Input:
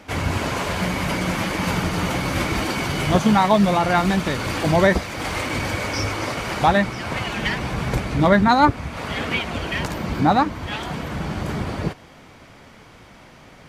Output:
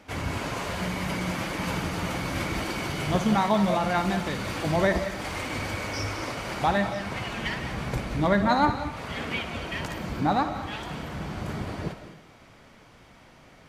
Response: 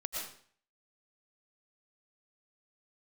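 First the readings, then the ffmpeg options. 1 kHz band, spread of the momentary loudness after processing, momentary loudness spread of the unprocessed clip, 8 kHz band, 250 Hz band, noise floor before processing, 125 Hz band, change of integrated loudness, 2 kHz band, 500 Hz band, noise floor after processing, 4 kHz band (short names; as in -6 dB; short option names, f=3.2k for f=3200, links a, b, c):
-7.0 dB, 11 LU, 11 LU, -7.0 dB, -7.0 dB, -46 dBFS, -7.0 dB, -6.5 dB, -7.0 dB, -6.5 dB, -53 dBFS, -6.5 dB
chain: -filter_complex "[0:a]asplit=2[a][b];[1:a]atrim=start_sample=2205,adelay=60[c];[b][c]afir=irnorm=-1:irlink=0,volume=-9dB[d];[a][d]amix=inputs=2:normalize=0,volume=-7.5dB"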